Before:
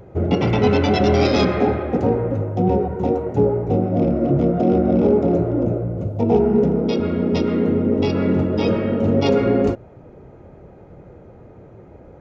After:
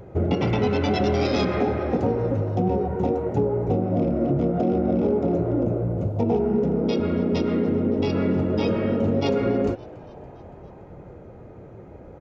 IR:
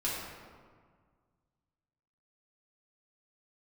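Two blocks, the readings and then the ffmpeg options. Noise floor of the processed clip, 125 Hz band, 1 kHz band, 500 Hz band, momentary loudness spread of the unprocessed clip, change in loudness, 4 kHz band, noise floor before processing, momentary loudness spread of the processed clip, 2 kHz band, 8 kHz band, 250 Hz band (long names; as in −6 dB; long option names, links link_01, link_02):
−43 dBFS, −4.0 dB, −4.5 dB, −4.5 dB, 5 LU, −4.5 dB, −5.0 dB, −44 dBFS, 3 LU, −4.5 dB, can't be measured, −4.5 dB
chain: -filter_complex "[0:a]acompressor=threshold=-19dB:ratio=4,asplit=6[link_01][link_02][link_03][link_04][link_05][link_06];[link_02]adelay=283,afreqshift=97,volume=-23.5dB[link_07];[link_03]adelay=566,afreqshift=194,volume=-27.4dB[link_08];[link_04]adelay=849,afreqshift=291,volume=-31.3dB[link_09];[link_05]adelay=1132,afreqshift=388,volume=-35.1dB[link_10];[link_06]adelay=1415,afreqshift=485,volume=-39dB[link_11];[link_01][link_07][link_08][link_09][link_10][link_11]amix=inputs=6:normalize=0"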